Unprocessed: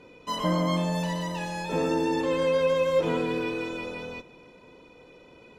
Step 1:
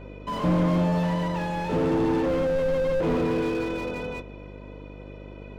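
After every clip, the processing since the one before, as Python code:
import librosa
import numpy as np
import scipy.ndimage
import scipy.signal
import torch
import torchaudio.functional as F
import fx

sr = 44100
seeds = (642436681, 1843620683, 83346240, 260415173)

y = fx.bass_treble(x, sr, bass_db=0, treble_db=-13)
y = fx.dmg_buzz(y, sr, base_hz=50.0, harmonics=13, level_db=-47.0, tilt_db=-4, odd_only=False)
y = fx.slew_limit(y, sr, full_power_hz=21.0)
y = y * librosa.db_to_amplitude(5.0)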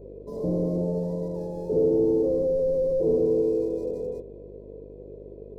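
y = fx.wiener(x, sr, points=15)
y = fx.curve_eq(y, sr, hz=(290.0, 420.0, 1500.0, 6300.0), db=(0, 14, -28, 8))
y = y * librosa.db_to_amplitude(-5.5)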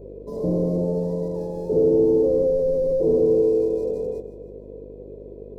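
y = fx.echo_feedback(x, sr, ms=156, feedback_pct=47, wet_db=-14)
y = y * librosa.db_to_amplitude(3.5)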